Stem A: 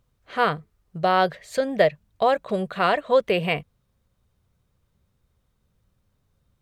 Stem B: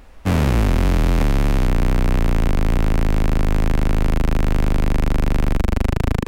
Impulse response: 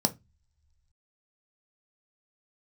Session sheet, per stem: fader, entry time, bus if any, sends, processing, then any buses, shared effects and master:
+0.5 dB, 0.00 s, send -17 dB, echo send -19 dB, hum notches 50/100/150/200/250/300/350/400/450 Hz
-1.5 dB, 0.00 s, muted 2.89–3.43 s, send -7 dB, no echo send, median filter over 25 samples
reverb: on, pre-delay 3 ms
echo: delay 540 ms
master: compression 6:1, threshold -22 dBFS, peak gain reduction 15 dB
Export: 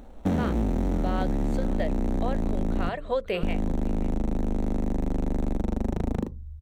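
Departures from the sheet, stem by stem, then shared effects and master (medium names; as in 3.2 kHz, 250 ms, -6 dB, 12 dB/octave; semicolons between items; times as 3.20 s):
stem A +0.5 dB -> -5.5 dB; reverb return -9.0 dB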